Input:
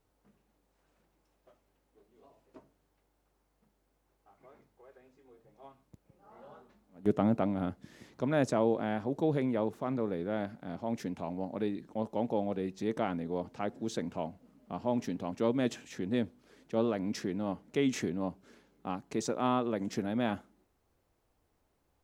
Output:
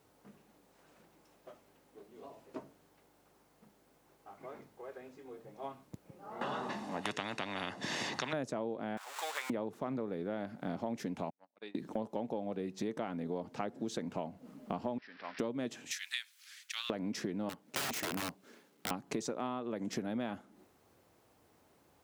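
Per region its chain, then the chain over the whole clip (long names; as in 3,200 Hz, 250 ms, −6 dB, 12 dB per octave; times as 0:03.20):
0:06.41–0:08.33: band-pass filter 180–6,600 Hz + comb filter 1.1 ms, depth 50% + every bin compressed towards the loudest bin 4 to 1
0:08.97–0:09.50: converter with a step at zero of −38.5 dBFS + high-pass filter 980 Hz 24 dB per octave + parametric band 7,600 Hz +6 dB 0.29 octaves
0:11.30–0:11.75: low-pass filter 2,900 Hz + noise gate −34 dBFS, range −36 dB + first difference
0:14.98–0:15.39: spike at every zero crossing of −31.5 dBFS + resonant band-pass 1,700 Hz, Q 3.1 + bad sample-rate conversion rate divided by 4×, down none, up filtered
0:15.91–0:16.90: inverse Chebyshev high-pass filter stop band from 500 Hz, stop band 60 dB + high-shelf EQ 2,600 Hz +9.5 dB + one half of a high-frequency compander decoder only
0:17.49–0:18.91: mu-law and A-law mismatch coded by A + low-shelf EQ 120 Hz −11.5 dB + wrap-around overflow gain 33.5 dB
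whole clip: high-pass filter 120 Hz 12 dB per octave; downward compressor 10 to 1, threshold −44 dBFS; level +10 dB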